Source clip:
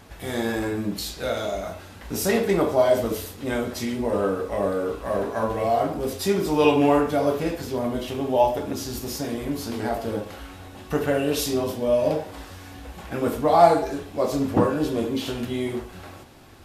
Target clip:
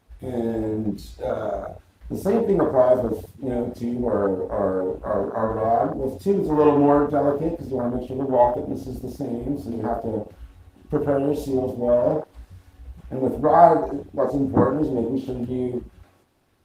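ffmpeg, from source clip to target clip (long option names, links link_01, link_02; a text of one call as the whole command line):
ffmpeg -i in.wav -af "afwtdn=0.0562,volume=2dB" -ar 48000 -c:a libopus -b:a 24k out.opus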